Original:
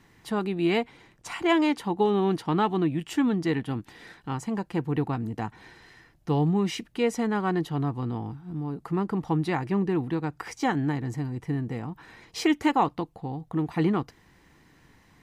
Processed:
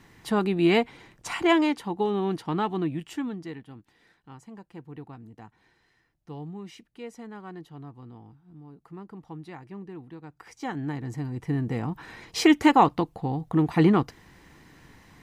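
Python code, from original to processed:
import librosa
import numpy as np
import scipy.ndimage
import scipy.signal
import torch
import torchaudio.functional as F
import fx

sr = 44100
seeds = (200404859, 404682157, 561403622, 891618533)

y = fx.gain(x, sr, db=fx.line((1.39, 3.5), (1.84, -3.0), (2.95, -3.0), (3.68, -15.0), (10.19, -15.0), (10.84, -5.0), (11.9, 5.0)))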